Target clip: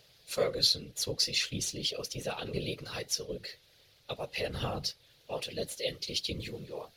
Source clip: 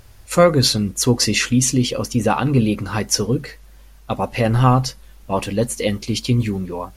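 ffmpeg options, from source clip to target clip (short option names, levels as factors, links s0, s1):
-filter_complex "[0:a]aemphasis=mode=production:type=riaa,acrossover=split=140[s0][s1];[s1]acompressor=threshold=0.0447:ratio=1.5[s2];[s0][s2]amix=inputs=2:normalize=0,acrusher=bits=7:mix=0:aa=0.000001,adynamicsmooth=sensitivity=7.5:basefreq=6100,afftfilt=real='hypot(re,im)*cos(2*PI*random(0))':imag='hypot(re,im)*sin(2*PI*random(1))':win_size=512:overlap=0.75,equalizer=f=125:t=o:w=1:g=7,equalizer=f=250:t=o:w=1:g=-5,equalizer=f=500:t=o:w=1:g=10,equalizer=f=1000:t=o:w=1:g=-8,equalizer=f=4000:t=o:w=1:g=11,equalizer=f=8000:t=o:w=1:g=-9,volume=0.422"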